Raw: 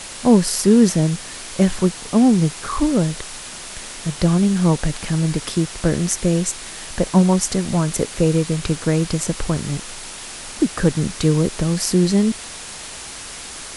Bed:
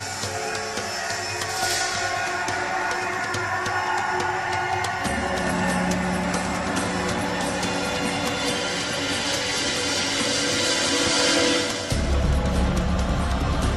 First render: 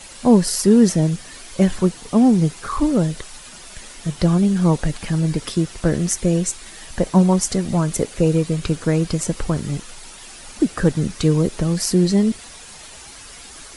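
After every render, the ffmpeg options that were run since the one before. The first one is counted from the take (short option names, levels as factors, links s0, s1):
-af "afftdn=nr=9:nf=-34"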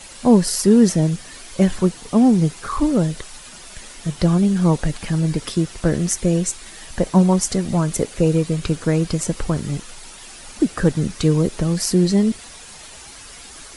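-af anull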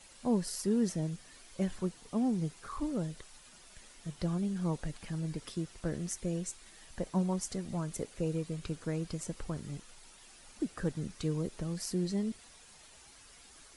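-af "volume=0.141"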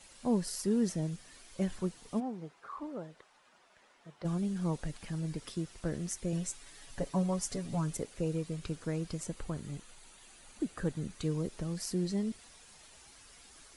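-filter_complex "[0:a]asplit=3[s0][s1][s2];[s0]afade=t=out:st=2.19:d=0.02[s3];[s1]bandpass=f=880:t=q:w=0.79,afade=t=in:st=2.19:d=0.02,afade=t=out:st=4.24:d=0.02[s4];[s2]afade=t=in:st=4.24:d=0.02[s5];[s3][s4][s5]amix=inputs=3:normalize=0,asettb=1/sr,asplit=3[s6][s7][s8];[s6]atrim=end=6.324[s9];[s7]atrim=start=6.32:end=7.97,asetpts=PTS-STARTPTS,afade=t=in:d=0.004:c=qsin,afade=t=out:st=1.646:d=0.004:c=qsin,aecho=1:1:7.1:0.73,atrim=end_sample=72765[s10];[s8]atrim=start=7.966[s11];[s9][s10]acrossfade=d=0.004:c1=hsin:c2=qsin[s12];[s12][s11]acrossfade=d=0.004:c1=qsin:c2=hsin,asettb=1/sr,asplit=3[s13][s14][s15];[s13]atrim=end=9.274[s16];[s14]atrim=start=9.27:end=11.24,asetpts=PTS-STARTPTS,afade=t=in:d=0.004:c=qsin,afade=t=out:st=1.966:d=0.004:c=qsin,bandreject=f=5300:w=6.8[s17];[s15]atrim=start=11.236[s18];[s16][s17]acrossfade=d=0.004:c1=hsin:c2=qsin[s19];[s19][s18]acrossfade=d=0.004:c1=qsin:c2=hsin"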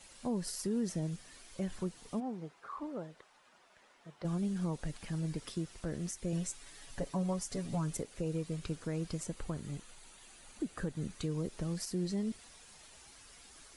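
-af "alimiter=level_in=1.33:limit=0.0631:level=0:latency=1:release=155,volume=0.75"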